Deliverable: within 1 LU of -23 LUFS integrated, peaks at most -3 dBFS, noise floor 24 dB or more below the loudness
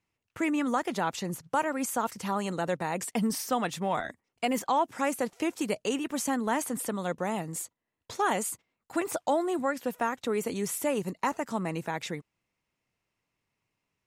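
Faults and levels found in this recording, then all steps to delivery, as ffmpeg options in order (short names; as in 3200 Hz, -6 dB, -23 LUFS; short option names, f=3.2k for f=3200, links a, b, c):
loudness -31.0 LUFS; peak -15.5 dBFS; loudness target -23.0 LUFS
-> -af "volume=8dB"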